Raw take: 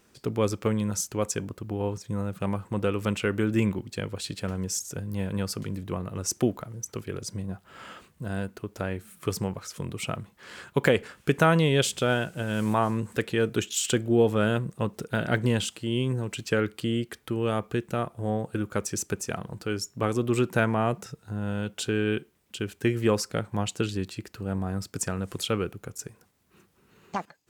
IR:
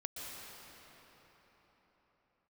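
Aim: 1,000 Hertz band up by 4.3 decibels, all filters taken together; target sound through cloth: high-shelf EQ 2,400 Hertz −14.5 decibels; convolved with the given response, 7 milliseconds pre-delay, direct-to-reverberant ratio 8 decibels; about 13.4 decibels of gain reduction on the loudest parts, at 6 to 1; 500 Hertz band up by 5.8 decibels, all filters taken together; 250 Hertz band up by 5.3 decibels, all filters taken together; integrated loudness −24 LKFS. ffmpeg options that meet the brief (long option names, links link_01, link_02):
-filter_complex "[0:a]equalizer=frequency=250:width_type=o:gain=5.5,equalizer=frequency=500:width_type=o:gain=4.5,equalizer=frequency=1000:width_type=o:gain=7,acompressor=threshold=-25dB:ratio=6,asplit=2[link_01][link_02];[1:a]atrim=start_sample=2205,adelay=7[link_03];[link_02][link_03]afir=irnorm=-1:irlink=0,volume=-8dB[link_04];[link_01][link_04]amix=inputs=2:normalize=0,highshelf=frequency=2400:gain=-14.5,volume=8dB"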